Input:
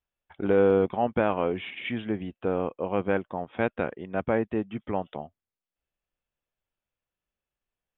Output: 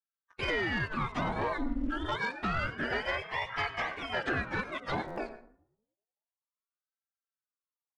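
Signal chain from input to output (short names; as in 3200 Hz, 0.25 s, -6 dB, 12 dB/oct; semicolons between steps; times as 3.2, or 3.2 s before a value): spectrum mirrored in octaves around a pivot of 600 Hz; gate -48 dBFS, range -11 dB; 1.41–2.8 comb 1.5 ms, depth 70%; 4.21–4.7 bell 500 Hz +11.5 dB 2.4 oct; compressor 6:1, threshold -32 dBFS, peak gain reduction 17 dB; sample leveller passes 2; downsampling 22050 Hz; reverb RT60 0.60 s, pre-delay 90 ms, DRR 12 dB; stuck buffer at 5.07, samples 512, times 8; ring modulator with a swept carrier 800 Hz, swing 85%, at 0.28 Hz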